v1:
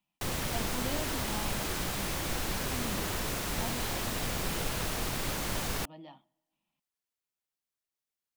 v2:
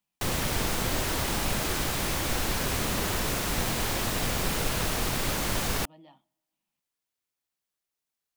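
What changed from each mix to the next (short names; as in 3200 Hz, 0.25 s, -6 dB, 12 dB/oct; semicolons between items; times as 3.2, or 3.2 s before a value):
speech -4.5 dB; background +5.0 dB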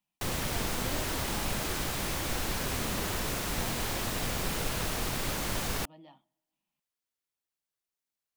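background -4.0 dB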